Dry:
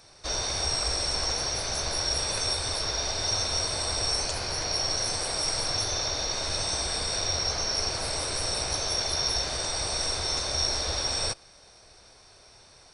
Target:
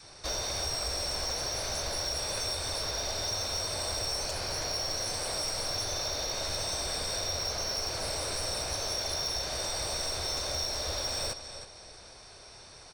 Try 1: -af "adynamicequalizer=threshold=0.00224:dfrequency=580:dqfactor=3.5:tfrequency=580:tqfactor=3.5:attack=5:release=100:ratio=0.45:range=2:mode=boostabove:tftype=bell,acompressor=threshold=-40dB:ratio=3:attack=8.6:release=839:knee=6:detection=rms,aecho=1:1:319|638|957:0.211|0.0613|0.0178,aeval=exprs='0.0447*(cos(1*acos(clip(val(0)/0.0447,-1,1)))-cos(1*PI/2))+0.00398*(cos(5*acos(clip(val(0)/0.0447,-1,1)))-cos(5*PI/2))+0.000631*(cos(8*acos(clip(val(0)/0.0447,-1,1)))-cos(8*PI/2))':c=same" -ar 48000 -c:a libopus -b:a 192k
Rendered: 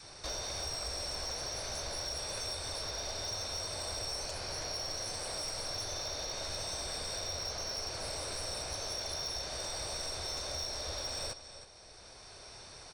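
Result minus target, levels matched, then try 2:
compressor: peak gain reduction +7.5 dB
-af "adynamicequalizer=threshold=0.00224:dfrequency=580:dqfactor=3.5:tfrequency=580:tqfactor=3.5:attack=5:release=100:ratio=0.45:range=2:mode=boostabove:tftype=bell,acompressor=threshold=-29dB:ratio=3:attack=8.6:release=839:knee=6:detection=rms,aecho=1:1:319|638|957:0.211|0.0613|0.0178,aeval=exprs='0.0447*(cos(1*acos(clip(val(0)/0.0447,-1,1)))-cos(1*PI/2))+0.00398*(cos(5*acos(clip(val(0)/0.0447,-1,1)))-cos(5*PI/2))+0.000631*(cos(8*acos(clip(val(0)/0.0447,-1,1)))-cos(8*PI/2))':c=same" -ar 48000 -c:a libopus -b:a 192k

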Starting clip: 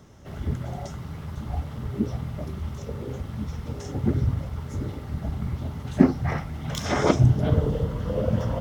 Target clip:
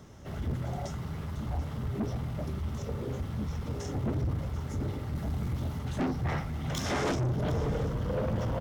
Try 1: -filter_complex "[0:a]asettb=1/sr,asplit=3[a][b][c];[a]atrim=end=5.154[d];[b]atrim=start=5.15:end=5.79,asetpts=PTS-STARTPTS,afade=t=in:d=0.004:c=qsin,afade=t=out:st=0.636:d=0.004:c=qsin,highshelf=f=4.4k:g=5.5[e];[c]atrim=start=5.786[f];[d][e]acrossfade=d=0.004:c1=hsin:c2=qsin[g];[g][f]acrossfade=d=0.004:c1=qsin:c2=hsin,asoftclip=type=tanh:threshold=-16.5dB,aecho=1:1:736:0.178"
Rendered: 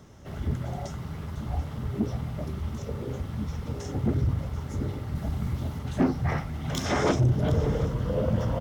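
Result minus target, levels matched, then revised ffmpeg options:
soft clip: distortion -6 dB
-filter_complex "[0:a]asettb=1/sr,asplit=3[a][b][c];[a]atrim=end=5.154[d];[b]atrim=start=5.15:end=5.79,asetpts=PTS-STARTPTS,afade=t=in:d=0.004:c=qsin,afade=t=out:st=0.636:d=0.004:c=qsin,highshelf=f=4.4k:g=5.5[e];[c]atrim=start=5.786[f];[d][e]acrossfade=d=0.004:c1=hsin:c2=qsin[g];[g][f]acrossfade=d=0.004:c1=qsin:c2=hsin,asoftclip=type=tanh:threshold=-26.5dB,aecho=1:1:736:0.178"

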